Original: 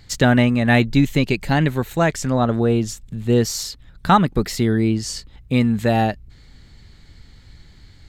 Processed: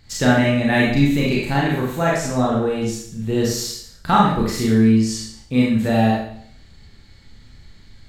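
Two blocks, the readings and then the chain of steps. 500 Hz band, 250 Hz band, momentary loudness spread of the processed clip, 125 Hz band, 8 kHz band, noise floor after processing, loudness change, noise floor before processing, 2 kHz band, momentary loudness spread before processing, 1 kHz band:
0.0 dB, +1.0 dB, 9 LU, -1.5 dB, +0.5 dB, -47 dBFS, +0.5 dB, -47 dBFS, +0.5 dB, 12 LU, +0.5 dB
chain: Schroeder reverb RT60 0.62 s, combs from 28 ms, DRR -4.5 dB; gain -5.5 dB

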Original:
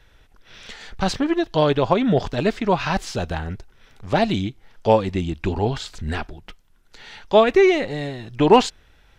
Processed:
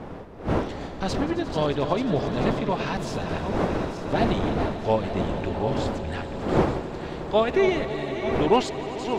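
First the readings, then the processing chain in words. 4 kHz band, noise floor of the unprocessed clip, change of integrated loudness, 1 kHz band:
-5.5 dB, -55 dBFS, -5.0 dB, -4.0 dB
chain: regenerating reverse delay 0.442 s, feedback 63%, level -9 dB; wind noise 520 Hz -23 dBFS; swelling echo 89 ms, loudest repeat 5, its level -17.5 dB; gain -7 dB

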